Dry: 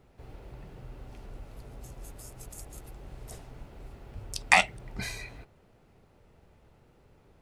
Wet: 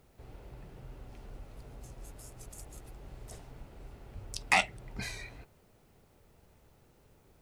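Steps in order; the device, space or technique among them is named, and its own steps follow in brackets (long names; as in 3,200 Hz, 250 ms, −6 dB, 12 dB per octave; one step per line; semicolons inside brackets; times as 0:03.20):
compact cassette (soft clipping −10.5 dBFS, distortion −13 dB; low-pass filter 12,000 Hz; tape wow and flutter; white noise bed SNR 34 dB)
level −3 dB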